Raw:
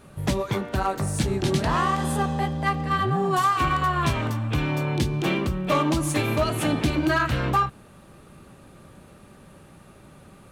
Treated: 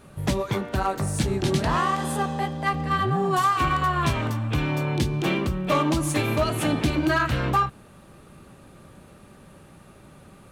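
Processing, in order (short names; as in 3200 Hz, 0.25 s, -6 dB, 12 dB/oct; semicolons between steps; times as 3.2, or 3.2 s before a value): 1.79–2.74 HPF 180 Hz 6 dB/oct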